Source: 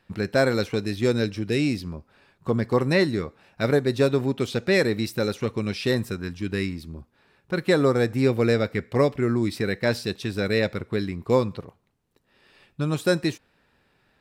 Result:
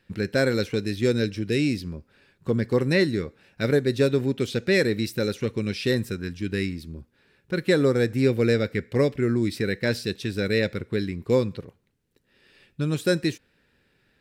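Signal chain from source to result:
flat-topped bell 890 Hz −8 dB 1.2 octaves

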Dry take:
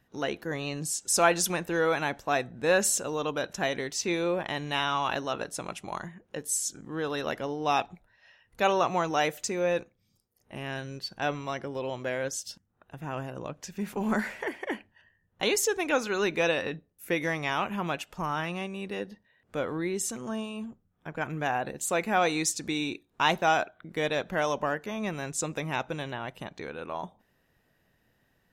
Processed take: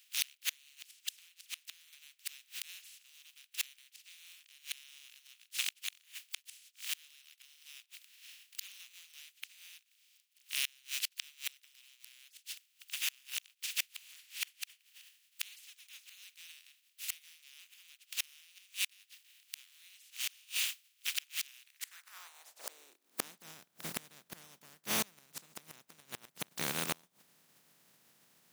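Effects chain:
compressing power law on the bin magnitudes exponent 0.14
0:00.79–0:01.93: downward compressor 8 to 1, threshold −30 dBFS, peak gain reduction 13 dB
high-pass filter sweep 2,700 Hz → 160 Hz, 0:21.62–0:23.44
gate with flip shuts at −21 dBFS, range −32 dB
level +2.5 dB

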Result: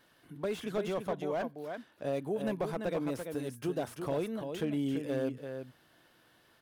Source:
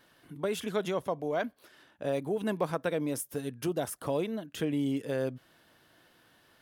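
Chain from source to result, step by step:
slap from a distant wall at 58 metres, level −7 dB
slew-rate limiting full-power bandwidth 36 Hz
level −2.5 dB

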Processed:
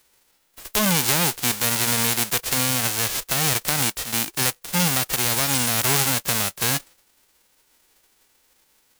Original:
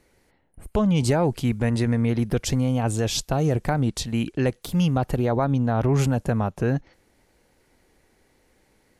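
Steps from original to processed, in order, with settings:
spectral envelope flattened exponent 0.1

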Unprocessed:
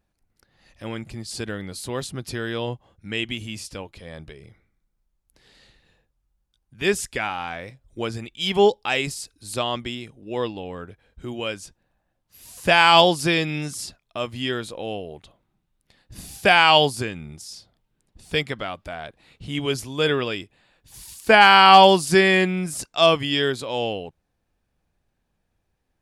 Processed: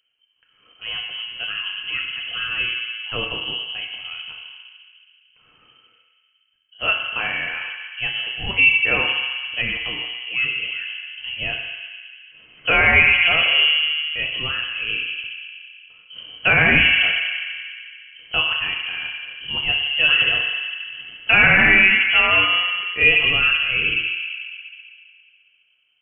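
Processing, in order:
feedback delay network reverb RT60 2.4 s, low-frequency decay 1.05×, high-frequency decay 0.25×, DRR −1 dB
voice inversion scrambler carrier 3,100 Hz
parametric band 850 Hz −6 dB 0.71 octaves
in parallel at 0 dB: brickwall limiter −7 dBFS, peak gain reduction 9 dB
on the sum: level −6 dB

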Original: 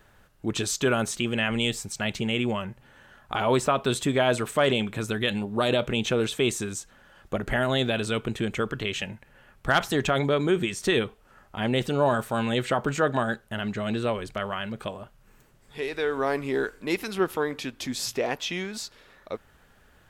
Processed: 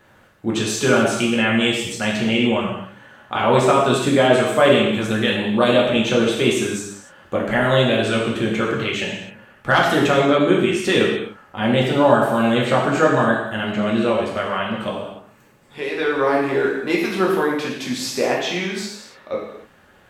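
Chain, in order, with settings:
high-pass filter 160 Hz 6 dB per octave
high-shelf EQ 4,200 Hz −7.5 dB
reverb whose tail is shaped and stops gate 320 ms falling, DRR −3.5 dB
level +4.5 dB

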